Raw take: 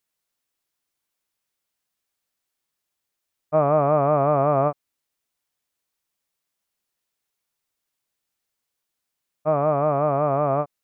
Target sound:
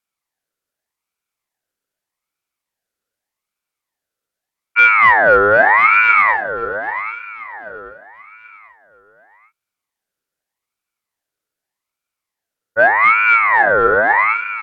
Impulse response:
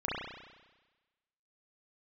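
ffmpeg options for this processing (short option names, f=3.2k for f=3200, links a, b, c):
-filter_complex "[0:a]equalizer=f=620:w=1.3:g=14,asplit=2[a][b];[b]acontrast=22,volume=-2dB[c];[a][c]amix=inputs=2:normalize=0,aeval=exprs='2*(cos(1*acos(clip(val(0)/2,-1,1)))-cos(1*PI/2))+0.0501*(cos(7*acos(clip(val(0)/2,-1,1)))-cos(7*PI/2))':c=same,asetrate=32667,aresample=44100,asplit=2[d][e];[e]aecho=0:1:785|1570|2355|3140:0.282|0.0958|0.0326|0.0111[f];[d][f]amix=inputs=2:normalize=0,aeval=exprs='val(0)*sin(2*PI*1400*n/s+1400*0.35/0.83*sin(2*PI*0.83*n/s))':c=same,volume=-7dB"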